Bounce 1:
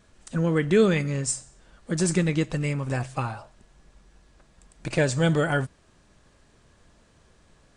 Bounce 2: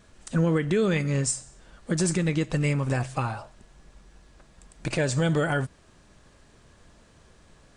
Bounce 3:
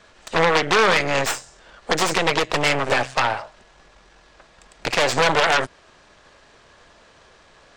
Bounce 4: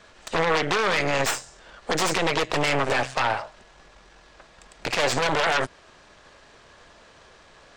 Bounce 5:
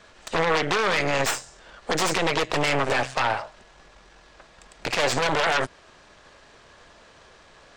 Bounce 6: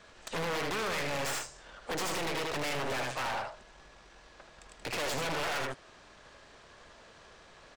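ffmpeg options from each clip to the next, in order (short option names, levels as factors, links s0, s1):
-af "alimiter=limit=0.119:level=0:latency=1:release=195,volume=1.41"
-filter_complex "[0:a]aeval=exprs='0.168*(cos(1*acos(clip(val(0)/0.168,-1,1)))-cos(1*PI/2))+0.0596*(cos(3*acos(clip(val(0)/0.168,-1,1)))-cos(3*PI/2))+0.0376*(cos(5*acos(clip(val(0)/0.168,-1,1)))-cos(5*PI/2))+0.075*(cos(6*acos(clip(val(0)/0.168,-1,1)))-cos(6*PI/2))+0.0188*(cos(8*acos(clip(val(0)/0.168,-1,1)))-cos(8*PI/2))':c=same,acrossover=split=420 6200:gain=0.2 1 0.141[s0][s1][s2];[s0][s1][s2]amix=inputs=3:normalize=0,volume=2.82"
-af "alimiter=limit=0.224:level=0:latency=1:release=23"
-af anull
-af "aecho=1:1:78:0.473,asoftclip=type=hard:threshold=0.0447,volume=0.596"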